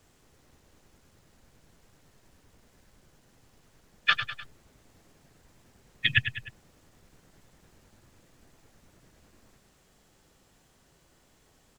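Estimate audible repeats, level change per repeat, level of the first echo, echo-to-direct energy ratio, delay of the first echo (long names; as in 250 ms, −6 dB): 3, −6.0 dB, −10.0 dB, −9.0 dB, 101 ms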